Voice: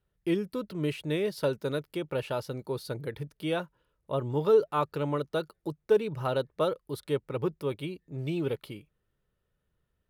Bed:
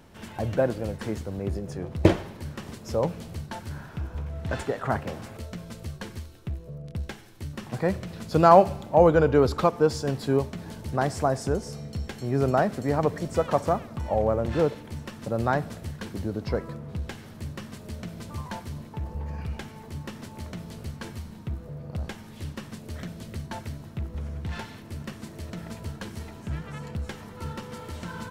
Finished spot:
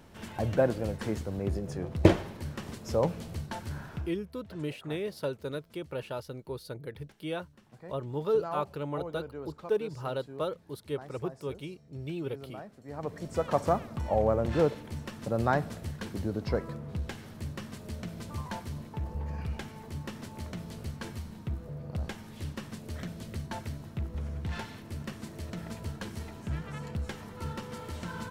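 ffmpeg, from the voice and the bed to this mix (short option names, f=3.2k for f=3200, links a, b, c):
-filter_complex "[0:a]adelay=3800,volume=-5dB[a];[1:a]volume=18.5dB,afade=t=out:st=3.94:d=0.21:silence=0.0944061,afade=t=in:st=12.84:d=0.88:silence=0.1[b];[a][b]amix=inputs=2:normalize=0"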